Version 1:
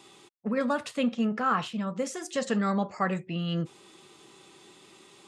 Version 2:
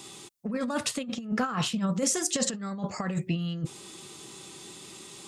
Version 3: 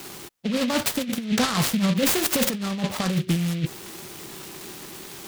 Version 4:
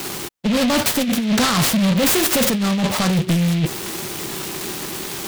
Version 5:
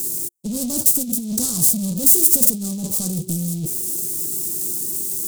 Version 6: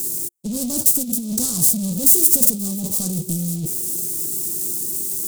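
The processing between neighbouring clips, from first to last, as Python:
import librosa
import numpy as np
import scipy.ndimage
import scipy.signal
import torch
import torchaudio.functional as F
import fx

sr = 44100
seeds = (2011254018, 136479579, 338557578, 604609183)

y1 = fx.bass_treble(x, sr, bass_db=7, treble_db=10)
y1 = fx.over_compress(y1, sr, threshold_db=-28.0, ratio=-0.5)
y2 = fx.fold_sine(y1, sr, drive_db=3, ceiling_db=-13.0)
y2 = fx.noise_mod_delay(y2, sr, seeds[0], noise_hz=2700.0, depth_ms=0.12)
y3 = fx.leveller(y2, sr, passes=3)
y4 = fx.curve_eq(y3, sr, hz=(350.0, 1900.0, 3100.0, 8100.0), db=(0, -26, -15, 15))
y4 = y4 * 10.0 ** (-7.0 / 20.0)
y5 = fx.echo_thinned(y4, sr, ms=531, feedback_pct=60, hz=420.0, wet_db=-19)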